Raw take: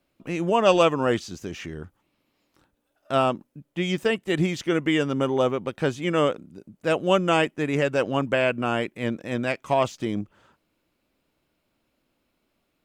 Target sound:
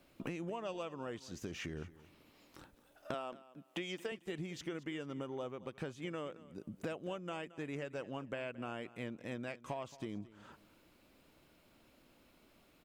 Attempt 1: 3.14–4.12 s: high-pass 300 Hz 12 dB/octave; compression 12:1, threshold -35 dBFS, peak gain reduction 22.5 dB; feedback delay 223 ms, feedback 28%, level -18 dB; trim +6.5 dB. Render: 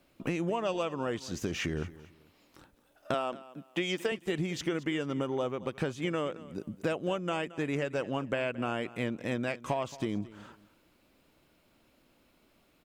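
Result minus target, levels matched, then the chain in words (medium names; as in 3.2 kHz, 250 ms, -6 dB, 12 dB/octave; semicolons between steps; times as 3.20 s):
compression: peak gain reduction -10 dB
3.14–4.12 s: high-pass 300 Hz 12 dB/octave; compression 12:1, threshold -46 dBFS, peak gain reduction 32.5 dB; feedback delay 223 ms, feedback 28%, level -18 dB; trim +6.5 dB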